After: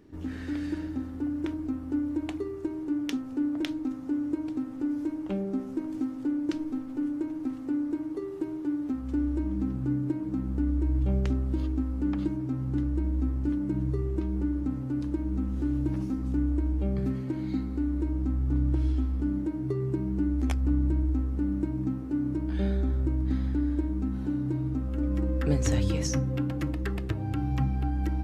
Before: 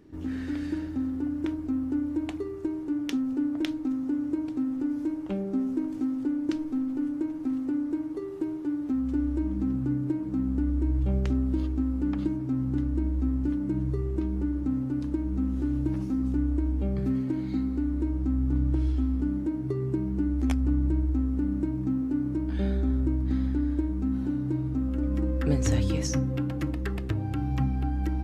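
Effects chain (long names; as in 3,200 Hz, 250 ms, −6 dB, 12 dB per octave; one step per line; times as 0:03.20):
hum removal 52.41 Hz, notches 7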